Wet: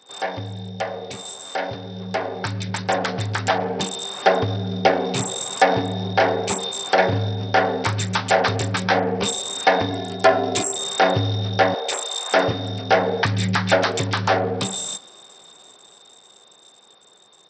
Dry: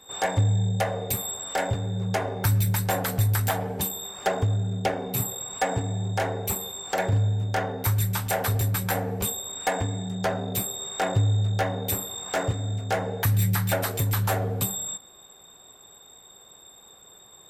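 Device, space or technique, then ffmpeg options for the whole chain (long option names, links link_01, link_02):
Bluetooth headset: -filter_complex "[0:a]asettb=1/sr,asplit=3[link_01][link_02][link_03];[link_01]atrim=end=9.904[link_04];[link_02]atrim=start=9.9:end=10.76,asetpts=PTS-STARTPTS,afade=type=in:duration=0.004:curve=qsin,afade=type=out:start_time=0.856:duration=0.004:curve=qsin,aecho=1:1:2.9:0.72,atrim=end_sample=37926[link_05];[link_03]atrim=start=10.756[link_06];[link_04][link_05]acrossfade=duration=0.004:curve1=hsin:curve2=qsin[link_07];[link_07][link_06]acrossfade=duration=0.004:curve1=qsin:curve2=hsin,asettb=1/sr,asplit=3[link_08][link_09][link_10];[link_08]atrim=end=11.744[link_11];[link_09]atrim=start=11.74:end=12.32,asetpts=PTS-STARTPTS,afade=type=in:duration=0.004:curve=qsin,afade=type=out:start_time=0.576:duration=0.004:curve=qsin,highpass=frequency=470:width=0.5412,highpass=frequency=470:width=1.3066[link_12];[link_10]atrim=start=12.316[link_13];[link_11][link_12]acrossfade=duration=0.004:curve1=hsin:curve2=qsin[link_14];[link_14][link_13]acrossfade=duration=0.004:curve1=qsin:curve2=hsin,highpass=200,dynaudnorm=framelen=570:gausssize=11:maxgain=14dB,aresample=16000,aresample=44100" -ar 44100 -c:a sbc -b:a 64k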